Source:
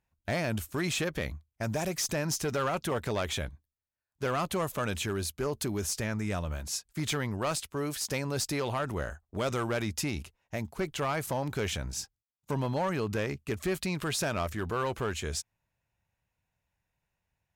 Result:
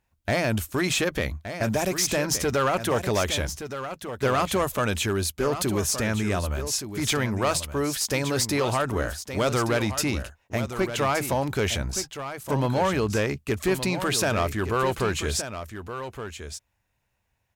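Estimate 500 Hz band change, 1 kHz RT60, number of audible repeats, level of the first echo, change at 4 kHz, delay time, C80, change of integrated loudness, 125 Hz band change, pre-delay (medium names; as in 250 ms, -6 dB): +7.5 dB, no reverb, 1, -10.0 dB, +7.5 dB, 1170 ms, no reverb, +7.0 dB, +6.0 dB, no reverb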